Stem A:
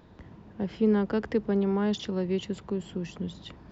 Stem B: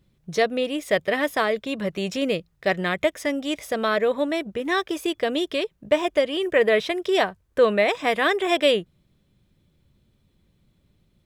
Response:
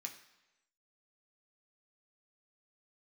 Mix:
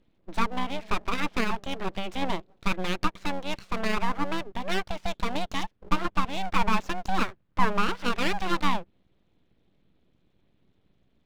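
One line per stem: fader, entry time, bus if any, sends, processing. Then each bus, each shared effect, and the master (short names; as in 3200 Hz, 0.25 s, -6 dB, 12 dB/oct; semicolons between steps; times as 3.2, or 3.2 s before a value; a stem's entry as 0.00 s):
-17.5 dB, 0.00 s, no send, echo send -12 dB, Wiener smoothing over 25 samples; HPF 150 Hz; auto duck -9 dB, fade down 1.75 s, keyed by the second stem
+0.5 dB, 0.00 s, no send, no echo send, LPF 3700 Hz 24 dB/oct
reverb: off
echo: feedback echo 0.181 s, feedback 42%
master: treble ducked by the level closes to 2000 Hz, closed at -17.5 dBFS; full-wave rectifier; AM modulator 190 Hz, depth 35%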